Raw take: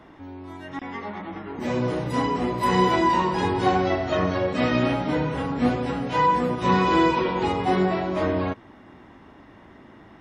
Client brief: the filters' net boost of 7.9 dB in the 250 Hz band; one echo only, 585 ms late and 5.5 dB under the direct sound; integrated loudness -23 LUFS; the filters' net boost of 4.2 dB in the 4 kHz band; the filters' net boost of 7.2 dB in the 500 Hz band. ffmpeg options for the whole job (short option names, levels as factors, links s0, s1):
-af "equalizer=f=250:t=o:g=8,equalizer=f=500:t=o:g=6.5,equalizer=f=4000:t=o:g=5.5,aecho=1:1:585:0.531,volume=0.473"